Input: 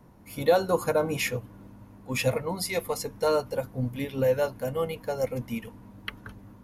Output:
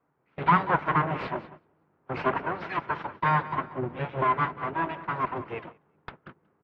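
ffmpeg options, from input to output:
-filter_complex "[0:a]aeval=exprs='abs(val(0))':c=same,highpass=120,equalizer=f=150:t=q:w=4:g=6,equalizer=f=230:t=q:w=4:g=-3,equalizer=f=940:t=q:w=4:g=4,equalizer=f=1400:t=q:w=4:g=5,lowpass=f=2500:w=0.5412,lowpass=f=2500:w=1.3066,asplit=2[s0][s1];[s1]aecho=0:1:187|374|561:0.168|0.0604|0.0218[s2];[s0][s2]amix=inputs=2:normalize=0,agate=range=0.126:threshold=0.00562:ratio=16:detection=peak,volume=1.41" -ar 44100 -c:a aac -b:a 48k

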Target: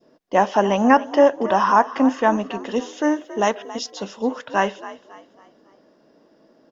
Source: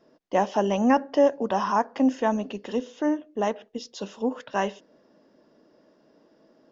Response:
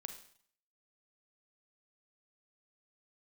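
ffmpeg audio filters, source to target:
-filter_complex "[0:a]asettb=1/sr,asplit=3[s0][s1][s2];[s0]atrim=end=2.764[s3];[s1]atrim=start=2.76:end=3.91,asetpts=PTS-STARTPTS,afade=t=in:d=0.004:c=qsin,afade=t=out:st=1.146:d=0.004:c=qsin,highshelf=f=4000:g=12[s4];[s2]atrim=start=3.906[s5];[s3][s4]acrossfade=d=0.004:c1=hsin:c2=qsin[s6];[s6][s5]acrossfade=d=0.004:c1=qsin:c2=hsin,asplit=2[s7][s8];[s8]asplit=4[s9][s10][s11][s12];[s9]adelay=276,afreqshift=50,volume=0.158[s13];[s10]adelay=552,afreqshift=100,volume=0.0668[s14];[s11]adelay=828,afreqshift=150,volume=0.0279[s15];[s12]adelay=1104,afreqshift=200,volume=0.0117[s16];[s13][s14][s15][s16]amix=inputs=4:normalize=0[s17];[s7][s17]amix=inputs=2:normalize=0,adynamicequalizer=threshold=0.0178:dfrequency=1400:dqfactor=0.83:tfrequency=1400:tqfactor=0.83:attack=5:release=100:ratio=0.375:range=3.5:mode=boostabove:tftype=bell,volume=1.5"

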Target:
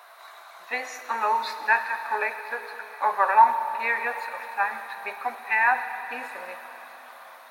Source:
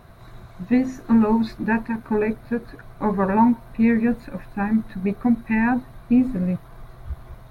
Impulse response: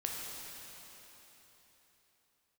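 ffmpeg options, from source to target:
-filter_complex "[0:a]highpass=f=740:w=0.5412,highpass=f=740:w=1.3066,asplit=2[s0][s1];[1:a]atrim=start_sample=2205[s2];[s1][s2]afir=irnorm=-1:irlink=0,volume=0.531[s3];[s0][s3]amix=inputs=2:normalize=0,volume=1.33"

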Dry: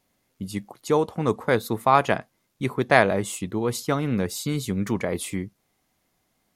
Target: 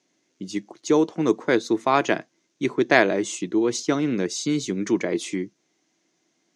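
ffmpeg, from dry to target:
-af "highpass=f=170:w=0.5412,highpass=f=170:w=1.3066,equalizer=f=210:t=q:w=4:g=-6,equalizer=f=330:t=q:w=4:g=9,equalizer=f=520:t=q:w=4:g=-4,equalizer=f=820:t=q:w=4:g=-6,equalizer=f=1200:t=q:w=4:g=-6,equalizer=f=6200:t=q:w=4:g=9,lowpass=f=6900:w=0.5412,lowpass=f=6900:w=1.3066,volume=1.26"

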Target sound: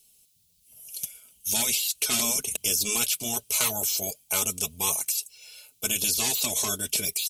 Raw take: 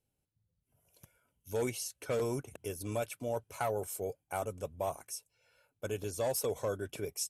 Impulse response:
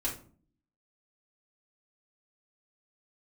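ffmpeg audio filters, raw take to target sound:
-af "aexciter=amount=11.1:drive=4:freq=2500,afftfilt=real='re*lt(hypot(re,im),0.0794)':imag='im*lt(hypot(re,im),0.0794)':win_size=1024:overlap=0.75,aecho=1:1:4.7:0.49,volume=2"

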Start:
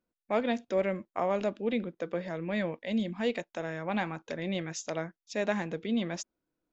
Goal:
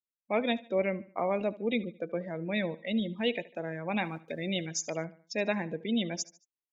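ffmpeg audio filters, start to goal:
-filter_complex "[0:a]asettb=1/sr,asplit=3[s0][s1][s2];[s0]atrim=end=4.034[s3];[s1]atrim=start=4.03:end=4.66,asetpts=PTS-STARTPTS,afade=t=in:d=0.004:c=qsin,afade=t=out:st=0.626:d=0.004:c=qsin,aeval=exprs='val(0)*gte(abs(val(0)),0.00422)':c=same[s4];[s2]atrim=start=4.656[s5];[s3][s4]acrossfade=d=0.004:c1=hsin:c2=qsin[s6];[s6][s5]acrossfade=d=0.004:c1=qsin:c2=hsin,afftdn=nr=28:nf=-39,highshelf=f=2100:t=q:w=1.5:g=7,aecho=1:1:74|148|222:0.106|0.0424|0.0169"

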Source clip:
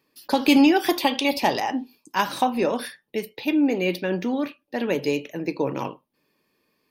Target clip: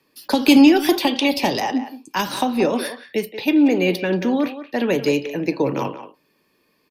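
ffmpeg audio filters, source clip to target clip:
-filter_complex "[0:a]acrossover=split=440|3000[s0][s1][s2];[s1]acompressor=threshold=0.0447:ratio=6[s3];[s0][s3][s2]amix=inputs=3:normalize=0,acrossover=split=310|500|5200[s4][s5][s6][s7];[s7]alimiter=limit=0.0708:level=0:latency=1:release=367[s8];[s4][s5][s6][s8]amix=inputs=4:normalize=0,asplit=2[s9][s10];[s10]adelay=180,highpass=300,lowpass=3400,asoftclip=type=hard:threshold=0.141,volume=0.282[s11];[s9][s11]amix=inputs=2:normalize=0,aresample=32000,aresample=44100,volume=1.88"

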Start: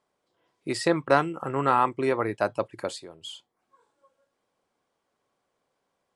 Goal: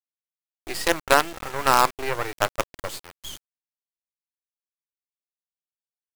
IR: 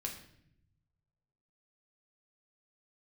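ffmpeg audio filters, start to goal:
-af "highpass=f=710:p=1,acrusher=bits=4:dc=4:mix=0:aa=0.000001,volume=2"

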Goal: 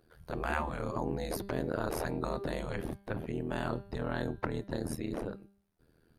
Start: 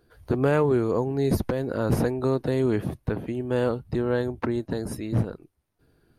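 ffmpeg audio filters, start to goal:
-af "tremolo=f=80:d=0.947,bandreject=f=198.9:t=h:w=4,bandreject=f=397.8:t=h:w=4,bandreject=f=596.7:t=h:w=4,bandreject=f=795.6:t=h:w=4,bandreject=f=994.5:t=h:w=4,bandreject=f=1193.4:t=h:w=4,bandreject=f=1392.3:t=h:w=4,bandreject=f=1591.2:t=h:w=4,bandreject=f=1790.1:t=h:w=4,bandreject=f=1989:t=h:w=4,bandreject=f=2187.9:t=h:w=4,bandreject=f=2386.8:t=h:w=4,bandreject=f=2585.7:t=h:w=4,bandreject=f=2784.6:t=h:w=4,bandreject=f=2983.5:t=h:w=4,bandreject=f=3182.4:t=h:w=4,bandreject=f=3381.3:t=h:w=4,bandreject=f=3580.2:t=h:w=4,bandreject=f=3779.1:t=h:w=4,bandreject=f=3978:t=h:w=4,bandreject=f=4176.9:t=h:w=4,bandreject=f=4375.8:t=h:w=4,bandreject=f=4574.7:t=h:w=4,bandreject=f=4773.6:t=h:w=4,afftfilt=real='re*lt(hypot(re,im),0.178)':imag='im*lt(hypot(re,im),0.178)':win_size=1024:overlap=0.75"

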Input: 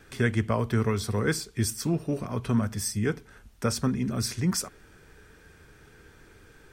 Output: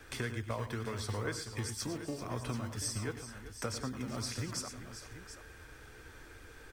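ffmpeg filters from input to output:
-filter_complex "[0:a]acrossover=split=150|5800[s0][s1][s2];[s0]acrusher=samples=35:mix=1:aa=0.000001:lfo=1:lforange=21:lforate=2[s3];[s3][s1][s2]amix=inputs=3:normalize=0,acrossover=split=9400[s4][s5];[s5]acompressor=threshold=0.00316:ratio=4:attack=1:release=60[s6];[s4][s6]amix=inputs=2:normalize=0,bandreject=f=400:w=12,acompressor=threshold=0.02:ratio=6,equalizer=f=180:w=2.6:g=-12.5,aecho=1:1:98|115|386|733:0.237|0.211|0.224|0.237,volume=1.12"

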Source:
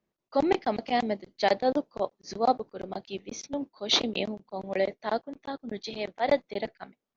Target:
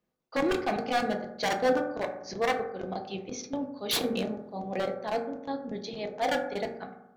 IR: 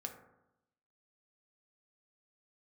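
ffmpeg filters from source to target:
-filter_complex "[0:a]asettb=1/sr,asplit=3[s0][s1][s2];[s0]atrim=end=3.974[s3];[s1]atrim=start=3.97:end=6.15,asetpts=PTS-STARTPTS,afade=t=in:d=0.004:c=qsin,afade=t=out:st=2.176:d=0.004:c=qsin,equalizer=f=2100:w=0.49:g=-4.5[s4];[s2]atrim=start=6.146[s5];[s3][s4]acrossfade=d=0.004:c1=hsin:c2=qsin[s6];[s6][s5]acrossfade=d=0.004:c1=qsin:c2=hsin,aeval=exprs='0.0841*(abs(mod(val(0)/0.0841+3,4)-2)-1)':c=same[s7];[1:a]atrim=start_sample=2205[s8];[s7][s8]afir=irnorm=-1:irlink=0,volume=1.5"

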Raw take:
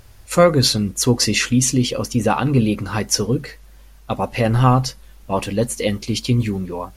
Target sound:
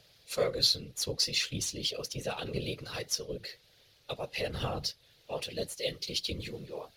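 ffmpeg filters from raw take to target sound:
-filter_complex "[0:a]aemphasis=mode=production:type=riaa,acrusher=bits=7:mix=0:aa=0.000001,afftfilt=real='hypot(re,im)*cos(2*PI*random(0))':imag='hypot(re,im)*sin(2*PI*random(1))':win_size=512:overlap=0.75,acrossover=split=140[s0][s1];[s1]acompressor=threshold=0.0224:ratio=1.5[s2];[s0][s2]amix=inputs=2:normalize=0,equalizer=f=125:t=o:w=1:g=7,equalizer=f=250:t=o:w=1:g=-5,equalizer=f=500:t=o:w=1:g=10,equalizer=f=1000:t=o:w=1:g=-8,equalizer=f=4000:t=o:w=1:g=11,equalizer=f=8000:t=o:w=1:g=-9,adynamicsmooth=sensitivity=7.5:basefreq=6100,volume=0.422"

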